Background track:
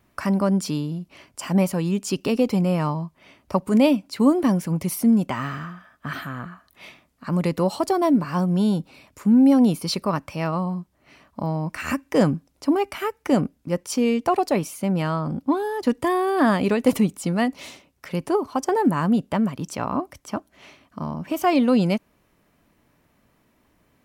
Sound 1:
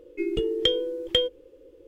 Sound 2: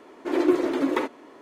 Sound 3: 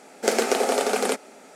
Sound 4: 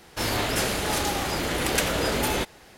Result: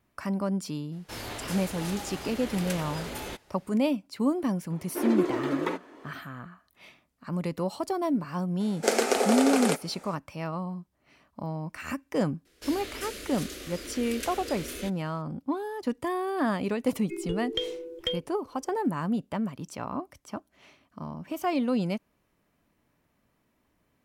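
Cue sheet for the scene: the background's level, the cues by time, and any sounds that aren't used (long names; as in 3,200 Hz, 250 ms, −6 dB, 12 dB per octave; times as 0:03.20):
background track −8.5 dB
0:00.92: mix in 4 −12 dB
0:04.70: mix in 2 −5 dB + camcorder AGC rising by 8.4 dB per second
0:08.60: mix in 3 −2.5 dB
0:12.45: mix in 4 −11.5 dB + phaser with its sweep stopped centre 350 Hz, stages 4
0:16.92: mix in 1 −8 dB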